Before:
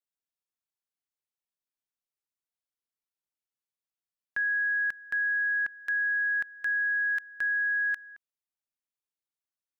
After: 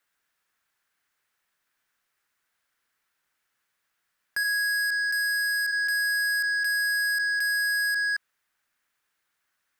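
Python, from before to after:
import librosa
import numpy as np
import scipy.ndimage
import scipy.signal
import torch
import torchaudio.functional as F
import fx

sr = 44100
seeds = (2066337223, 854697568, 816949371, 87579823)

p1 = fx.over_compress(x, sr, threshold_db=-39.0, ratio=-1.0)
p2 = x + F.gain(torch.from_numpy(p1), 1.0).numpy()
p3 = fx.peak_eq(p2, sr, hz=1600.0, db=13.5, octaves=1.2)
p4 = np.clip(p3, -10.0 ** (-25.0 / 20.0), 10.0 ** (-25.0 / 20.0))
y = fx.highpass(p4, sr, hz=fx.line((4.43, 1200.0), (5.71, 1400.0)), slope=24, at=(4.43, 5.71), fade=0.02)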